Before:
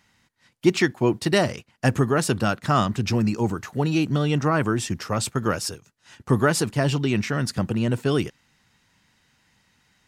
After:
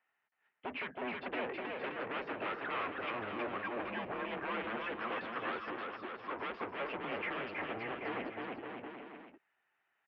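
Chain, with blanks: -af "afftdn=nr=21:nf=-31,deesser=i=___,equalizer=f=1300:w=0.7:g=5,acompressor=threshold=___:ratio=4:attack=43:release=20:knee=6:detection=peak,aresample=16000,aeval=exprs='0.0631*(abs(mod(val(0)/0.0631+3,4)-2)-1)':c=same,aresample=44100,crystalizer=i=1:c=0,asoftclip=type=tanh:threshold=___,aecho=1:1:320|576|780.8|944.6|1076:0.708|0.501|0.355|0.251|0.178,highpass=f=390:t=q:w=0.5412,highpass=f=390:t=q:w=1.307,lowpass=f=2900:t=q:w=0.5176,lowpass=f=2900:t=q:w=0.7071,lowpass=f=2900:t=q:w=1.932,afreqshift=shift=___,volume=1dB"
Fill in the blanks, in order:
0.65, -29dB, -36.5dB, -110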